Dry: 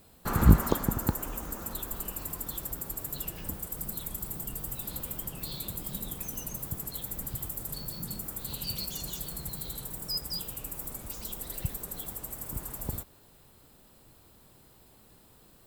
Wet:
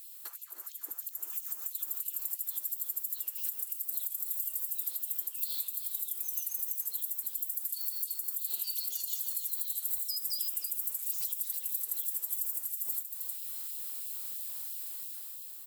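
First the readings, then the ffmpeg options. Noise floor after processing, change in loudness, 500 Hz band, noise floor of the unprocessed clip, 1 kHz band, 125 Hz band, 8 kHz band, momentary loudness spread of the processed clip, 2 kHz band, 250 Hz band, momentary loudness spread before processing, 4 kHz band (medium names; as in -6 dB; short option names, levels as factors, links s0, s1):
-48 dBFS, 0.0 dB, under -25 dB, -58 dBFS, under -20 dB, under -40 dB, +1.5 dB, 6 LU, under -10 dB, under -35 dB, 7 LU, -3.5 dB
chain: -filter_complex "[0:a]acrossover=split=400[s0][s1];[s1]acompressor=threshold=0.00562:ratio=6[s2];[s0][s2]amix=inputs=2:normalize=0,aderivative,asplit=2[s3][s4];[s4]aecho=0:1:311:0.355[s5];[s3][s5]amix=inputs=2:normalize=0,alimiter=level_in=4.22:limit=0.0631:level=0:latency=1:release=485,volume=0.237,dynaudnorm=f=170:g=13:m=2.66,afftfilt=real='re*gte(b*sr/1024,250*pow(2600/250,0.5+0.5*sin(2*PI*3*pts/sr)))':imag='im*gte(b*sr/1024,250*pow(2600/250,0.5+0.5*sin(2*PI*3*pts/sr)))':win_size=1024:overlap=0.75,volume=2.82"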